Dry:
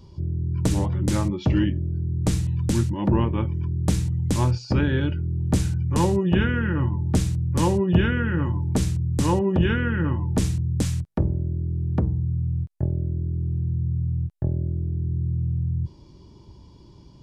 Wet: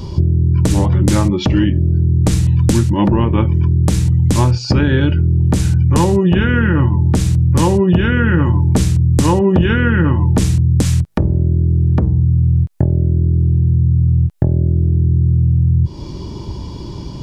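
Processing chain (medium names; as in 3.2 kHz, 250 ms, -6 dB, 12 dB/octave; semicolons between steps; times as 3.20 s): compression 6:1, threshold -31 dBFS, peak gain reduction 17.5 dB; loudness maximiser +22 dB; trim -1 dB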